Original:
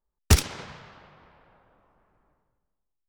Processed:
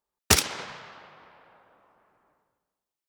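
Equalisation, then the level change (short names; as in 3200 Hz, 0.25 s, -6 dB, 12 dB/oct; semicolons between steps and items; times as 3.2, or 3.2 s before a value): HPF 450 Hz 6 dB/oct; +4.5 dB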